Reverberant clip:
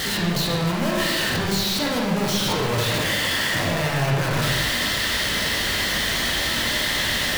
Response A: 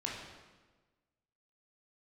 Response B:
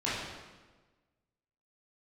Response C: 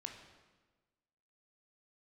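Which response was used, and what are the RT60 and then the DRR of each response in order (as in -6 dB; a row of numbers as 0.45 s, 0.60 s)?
A; 1.3 s, 1.3 s, 1.3 s; -3.5 dB, -10.0 dB, 3.0 dB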